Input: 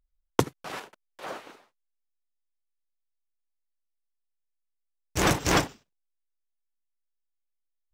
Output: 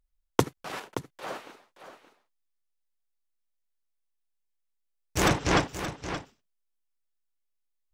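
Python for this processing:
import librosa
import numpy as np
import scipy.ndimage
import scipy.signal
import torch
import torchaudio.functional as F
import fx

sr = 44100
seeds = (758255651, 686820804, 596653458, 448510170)

y = fx.air_absorb(x, sr, metres=82.0, at=(5.28, 5.68))
y = y + 10.0 ** (-11.0 / 20.0) * np.pad(y, (int(574 * sr / 1000.0), 0))[:len(y)]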